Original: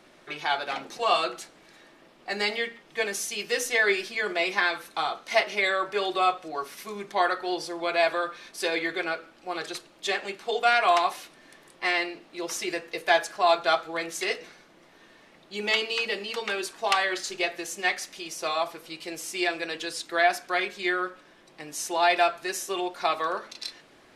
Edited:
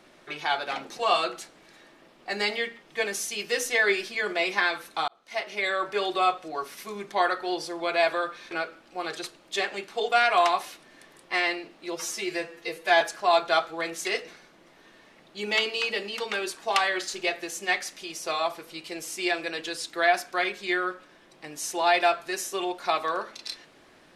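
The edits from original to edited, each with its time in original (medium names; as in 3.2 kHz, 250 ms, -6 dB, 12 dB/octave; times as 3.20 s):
5.08–5.86 s: fade in
8.51–9.02 s: delete
12.47–13.17 s: stretch 1.5×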